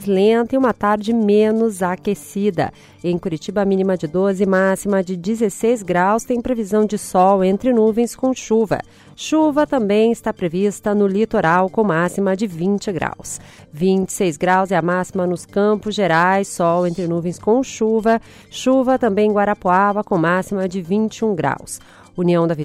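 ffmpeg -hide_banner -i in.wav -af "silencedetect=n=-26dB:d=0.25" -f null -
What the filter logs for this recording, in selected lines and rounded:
silence_start: 2.69
silence_end: 3.04 | silence_duration: 0.35
silence_start: 8.81
silence_end: 9.20 | silence_duration: 0.39
silence_start: 13.36
silence_end: 13.77 | silence_duration: 0.41
silence_start: 18.18
silence_end: 18.54 | silence_duration: 0.37
silence_start: 21.76
silence_end: 22.18 | silence_duration: 0.42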